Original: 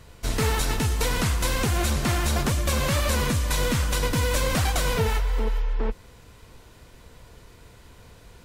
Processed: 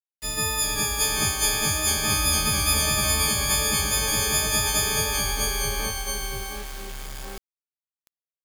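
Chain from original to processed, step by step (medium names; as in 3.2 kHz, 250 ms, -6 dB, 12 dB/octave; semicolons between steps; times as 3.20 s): partials quantised in pitch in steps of 6 st; 2.10–2.74 s: comb 0.8 ms, depth 52%; ever faster or slower copies 370 ms, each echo -1 st, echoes 2; bit crusher 5-bit; trim -8 dB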